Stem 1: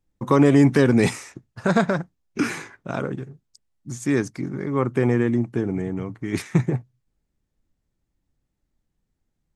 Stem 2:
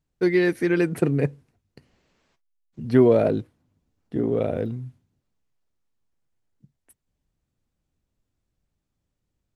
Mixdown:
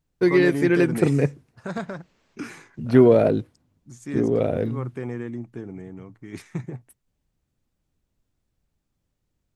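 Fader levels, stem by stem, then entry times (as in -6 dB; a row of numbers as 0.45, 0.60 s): -11.5, +2.0 dB; 0.00, 0.00 s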